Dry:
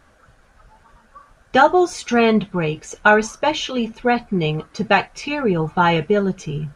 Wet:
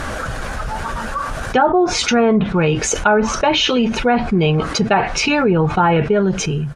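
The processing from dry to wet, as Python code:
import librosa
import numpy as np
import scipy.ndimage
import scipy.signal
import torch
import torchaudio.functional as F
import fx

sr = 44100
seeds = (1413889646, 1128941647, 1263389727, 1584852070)

y = fx.fade_out_tail(x, sr, length_s=0.74)
y = fx.env_lowpass_down(y, sr, base_hz=1300.0, full_db=-10.5)
y = fx.env_flatten(y, sr, amount_pct=70)
y = F.gain(torch.from_numpy(y), -1.5).numpy()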